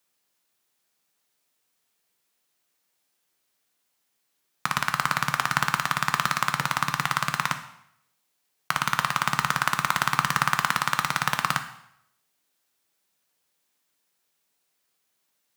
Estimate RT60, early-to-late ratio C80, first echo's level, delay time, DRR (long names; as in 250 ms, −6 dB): 0.75 s, 13.5 dB, no echo audible, no echo audible, 7.5 dB